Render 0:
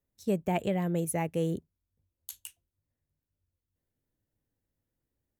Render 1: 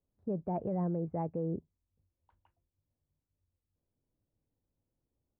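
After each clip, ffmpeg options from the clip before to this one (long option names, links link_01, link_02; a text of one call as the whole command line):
ffmpeg -i in.wav -af "lowpass=frequency=1100:width=0.5412,lowpass=frequency=1100:width=1.3066,alimiter=level_in=3dB:limit=-24dB:level=0:latency=1:release=33,volume=-3dB" out.wav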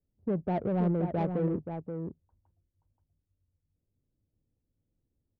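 ffmpeg -i in.wav -af "aecho=1:1:528:0.473,adynamicsmooth=sensitivity=3.5:basefreq=510,volume=5dB" out.wav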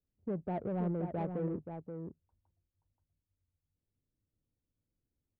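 ffmpeg -i in.wav -af "bass=frequency=250:gain=-1,treble=frequency=4000:gain=-13,volume=-6dB" out.wav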